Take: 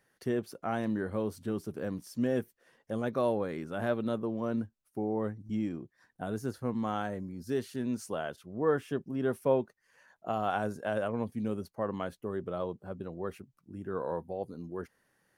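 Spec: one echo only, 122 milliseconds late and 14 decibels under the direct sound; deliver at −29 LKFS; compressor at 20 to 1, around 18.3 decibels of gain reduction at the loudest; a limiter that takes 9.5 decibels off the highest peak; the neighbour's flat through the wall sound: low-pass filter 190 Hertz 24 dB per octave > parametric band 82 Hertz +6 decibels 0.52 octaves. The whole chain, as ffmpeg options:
ffmpeg -i in.wav -af "acompressor=threshold=-40dB:ratio=20,alimiter=level_in=12.5dB:limit=-24dB:level=0:latency=1,volume=-12.5dB,lowpass=frequency=190:width=0.5412,lowpass=frequency=190:width=1.3066,equalizer=frequency=82:width_type=o:width=0.52:gain=6,aecho=1:1:122:0.2,volume=25.5dB" out.wav

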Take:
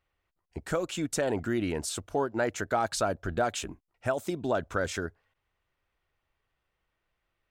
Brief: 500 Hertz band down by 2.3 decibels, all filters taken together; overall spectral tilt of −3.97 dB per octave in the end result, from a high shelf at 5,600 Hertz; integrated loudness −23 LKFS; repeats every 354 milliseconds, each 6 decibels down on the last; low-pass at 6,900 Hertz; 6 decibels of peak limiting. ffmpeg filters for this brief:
ffmpeg -i in.wav -af "lowpass=6900,equalizer=frequency=500:width_type=o:gain=-3,highshelf=frequency=5600:gain=4,alimiter=limit=-22.5dB:level=0:latency=1,aecho=1:1:354|708|1062|1416|1770|2124:0.501|0.251|0.125|0.0626|0.0313|0.0157,volume=10.5dB" out.wav

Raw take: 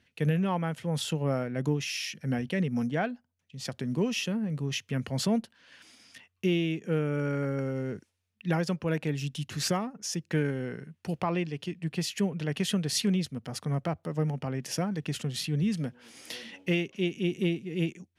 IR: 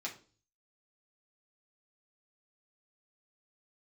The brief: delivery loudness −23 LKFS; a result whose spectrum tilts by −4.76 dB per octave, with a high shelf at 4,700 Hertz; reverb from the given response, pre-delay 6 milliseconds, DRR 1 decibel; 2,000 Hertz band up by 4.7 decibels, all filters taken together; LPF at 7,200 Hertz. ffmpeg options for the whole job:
-filter_complex "[0:a]lowpass=7200,equalizer=frequency=2000:width_type=o:gain=4.5,highshelf=frequency=4700:gain=8,asplit=2[link_01][link_02];[1:a]atrim=start_sample=2205,adelay=6[link_03];[link_02][link_03]afir=irnorm=-1:irlink=0,volume=-2dB[link_04];[link_01][link_04]amix=inputs=2:normalize=0,volume=4.5dB"

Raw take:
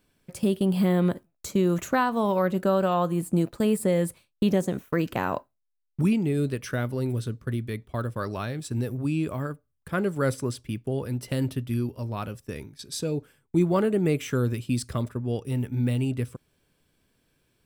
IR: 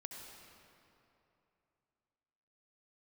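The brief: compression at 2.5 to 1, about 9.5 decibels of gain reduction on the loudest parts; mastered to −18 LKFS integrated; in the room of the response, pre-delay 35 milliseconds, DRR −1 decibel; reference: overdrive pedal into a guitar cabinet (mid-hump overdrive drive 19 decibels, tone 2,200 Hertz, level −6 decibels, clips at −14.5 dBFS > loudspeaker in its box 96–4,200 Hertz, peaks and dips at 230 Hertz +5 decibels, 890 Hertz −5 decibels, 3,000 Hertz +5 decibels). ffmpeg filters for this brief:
-filter_complex "[0:a]acompressor=threshold=-33dB:ratio=2.5,asplit=2[link_01][link_02];[1:a]atrim=start_sample=2205,adelay=35[link_03];[link_02][link_03]afir=irnorm=-1:irlink=0,volume=4.5dB[link_04];[link_01][link_04]amix=inputs=2:normalize=0,asplit=2[link_05][link_06];[link_06]highpass=frequency=720:poles=1,volume=19dB,asoftclip=type=tanh:threshold=-14.5dB[link_07];[link_05][link_07]amix=inputs=2:normalize=0,lowpass=frequency=2200:poles=1,volume=-6dB,highpass=96,equalizer=frequency=230:width_type=q:width=4:gain=5,equalizer=frequency=890:width_type=q:width=4:gain=-5,equalizer=frequency=3000:width_type=q:width=4:gain=5,lowpass=frequency=4200:width=0.5412,lowpass=frequency=4200:width=1.3066,volume=8.5dB"

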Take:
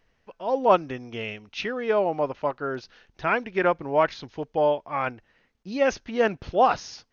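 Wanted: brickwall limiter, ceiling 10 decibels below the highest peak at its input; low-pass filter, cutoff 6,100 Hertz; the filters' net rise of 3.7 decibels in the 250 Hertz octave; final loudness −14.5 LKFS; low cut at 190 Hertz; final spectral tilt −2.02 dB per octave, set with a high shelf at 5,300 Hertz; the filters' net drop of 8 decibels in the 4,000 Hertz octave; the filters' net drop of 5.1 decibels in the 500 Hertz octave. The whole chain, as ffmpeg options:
ffmpeg -i in.wav -af "highpass=190,lowpass=6100,equalizer=frequency=250:width_type=o:gain=8.5,equalizer=frequency=500:width_type=o:gain=-8,equalizer=frequency=4000:width_type=o:gain=-8,highshelf=frequency=5300:gain=-7.5,volume=16.5dB,alimiter=limit=-1.5dB:level=0:latency=1" out.wav

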